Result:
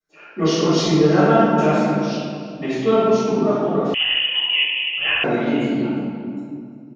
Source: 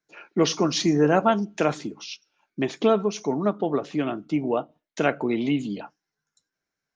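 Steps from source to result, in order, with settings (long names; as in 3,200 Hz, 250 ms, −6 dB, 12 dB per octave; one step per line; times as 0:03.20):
slap from a distant wall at 60 metres, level −14 dB
convolution reverb RT60 2.3 s, pre-delay 3 ms, DRR −18 dB
0:03.94–0:05.24: voice inversion scrambler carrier 3,200 Hz
level −13.5 dB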